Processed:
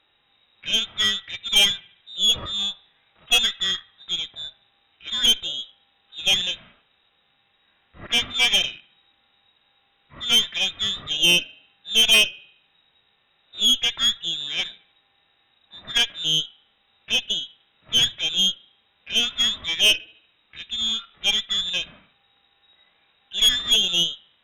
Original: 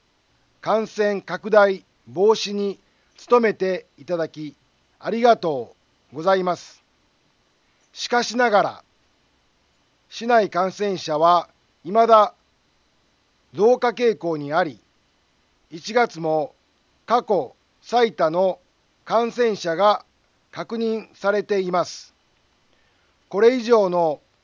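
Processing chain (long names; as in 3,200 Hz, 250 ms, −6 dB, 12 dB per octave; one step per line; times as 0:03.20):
parametric band 330 Hz −8 dB 1.9 octaves
voice inversion scrambler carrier 3,800 Hz
harmonic and percussive parts rebalanced percussive −12 dB
on a send: delay with a low-pass on its return 72 ms, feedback 48%, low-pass 2,100 Hz, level −18.5 dB
on the sum: tube saturation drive 18 dB, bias 0.6
level +7 dB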